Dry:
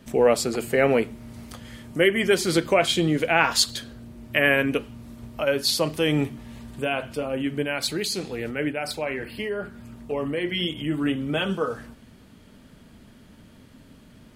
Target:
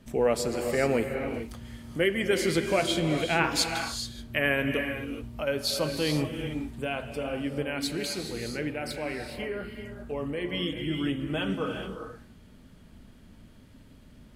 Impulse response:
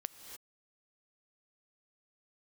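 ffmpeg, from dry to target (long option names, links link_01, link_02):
-filter_complex "[0:a]lowshelf=frequency=92:gain=10[link_01];[1:a]atrim=start_sample=2205,asetrate=30870,aresample=44100[link_02];[link_01][link_02]afir=irnorm=-1:irlink=0,volume=-5dB"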